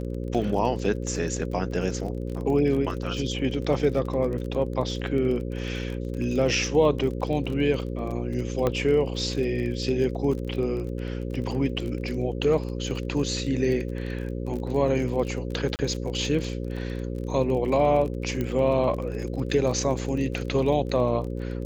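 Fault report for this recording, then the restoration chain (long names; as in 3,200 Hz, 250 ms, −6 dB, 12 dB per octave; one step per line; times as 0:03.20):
mains buzz 60 Hz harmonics 9 −31 dBFS
surface crackle 30 per second −32 dBFS
0:08.67: click −12 dBFS
0:15.76–0:15.79: drop-out 29 ms
0:18.41: click −16 dBFS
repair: click removal
hum removal 60 Hz, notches 9
repair the gap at 0:15.76, 29 ms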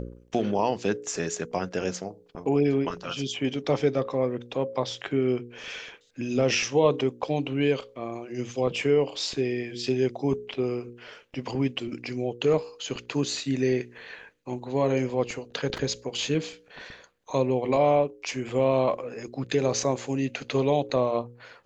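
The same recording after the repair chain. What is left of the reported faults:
none of them is left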